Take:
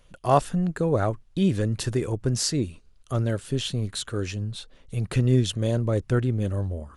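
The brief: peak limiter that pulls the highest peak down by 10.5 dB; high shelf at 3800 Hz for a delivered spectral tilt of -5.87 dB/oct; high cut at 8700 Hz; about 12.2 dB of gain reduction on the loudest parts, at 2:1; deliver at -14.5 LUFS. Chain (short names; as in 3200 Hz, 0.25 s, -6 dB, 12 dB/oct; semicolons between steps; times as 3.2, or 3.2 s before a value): LPF 8700 Hz; high shelf 3800 Hz -7.5 dB; compressor 2:1, threshold -37 dBFS; gain +25.5 dB; limiter -5 dBFS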